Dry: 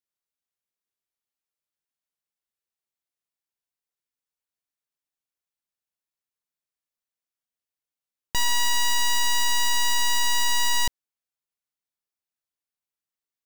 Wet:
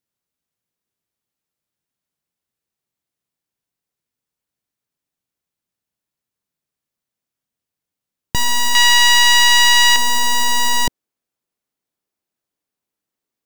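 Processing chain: peaking EQ 150 Hz +10.5 dB 2.8 oct, from 8.75 s 2.3 kHz, from 9.96 s 280 Hz; trim +5.5 dB

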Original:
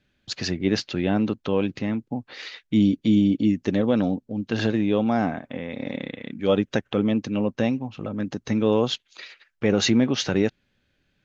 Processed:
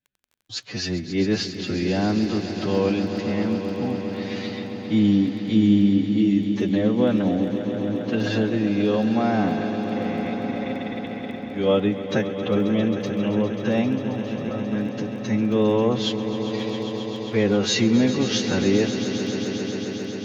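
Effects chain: time stretch by phase-locked vocoder 1.8×; gate with hold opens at -50 dBFS; crackle 10 per s -37 dBFS; on a send: echo with a slow build-up 134 ms, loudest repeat 5, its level -13 dB

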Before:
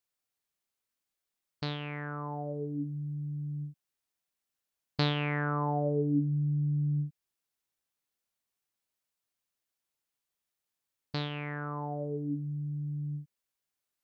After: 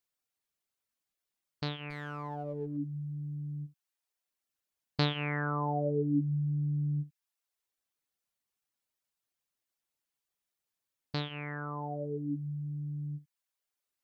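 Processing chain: reverb removal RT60 0.6 s; 1.90–2.77 s: sliding maximum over 5 samples

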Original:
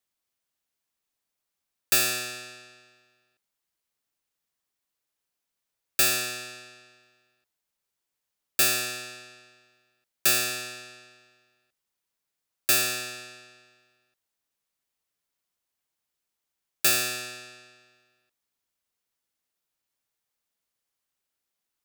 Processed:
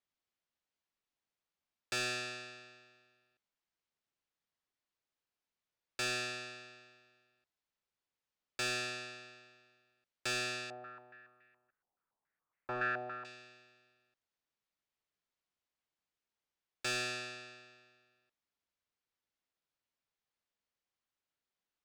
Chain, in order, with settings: saturation -20.5 dBFS, distortion -11 dB; distance through air 110 m; 10.70–13.25 s: step-sequenced low-pass 7.1 Hz 770–2000 Hz; trim -4 dB

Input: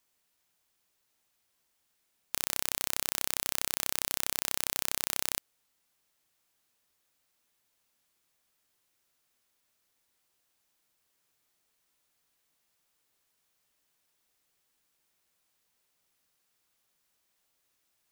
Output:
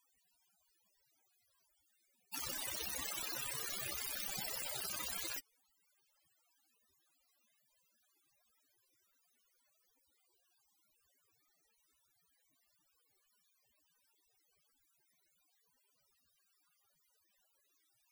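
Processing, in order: loudest bins only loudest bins 32; trim +10 dB

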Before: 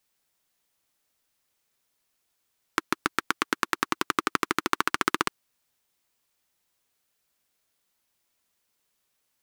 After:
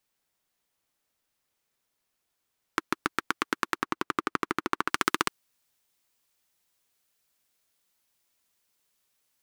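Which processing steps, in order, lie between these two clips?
treble shelf 2.7 kHz -3.5 dB, from 3.78 s -10 dB, from 4.89 s +3 dB; trim -1.5 dB

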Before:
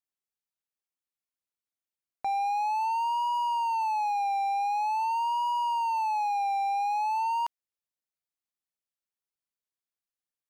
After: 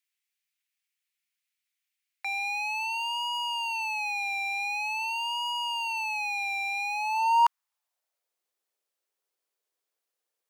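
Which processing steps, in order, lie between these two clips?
high-pass sweep 2.2 kHz -> 440 Hz, 6.81–8.40 s; trim +7 dB

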